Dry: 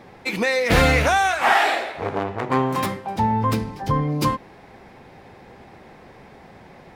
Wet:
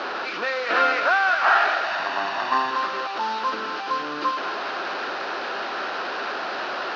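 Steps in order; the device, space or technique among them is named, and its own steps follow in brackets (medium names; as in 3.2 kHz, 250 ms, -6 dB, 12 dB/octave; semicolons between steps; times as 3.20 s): high-pass 150 Hz 12 dB/octave; digital answering machine (band-pass 370–3400 Hz; one-bit delta coder 32 kbps, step -20.5 dBFS; cabinet simulation 380–4200 Hz, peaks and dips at 480 Hz -6 dB, 830 Hz -6 dB, 1.4 kHz +8 dB, 2.1 kHz -10 dB, 3.4 kHz -6 dB); 1.84–2.71 s: comb 1.1 ms, depth 76%; thinning echo 210 ms, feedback 84%, high-pass 1.2 kHz, level -8.5 dB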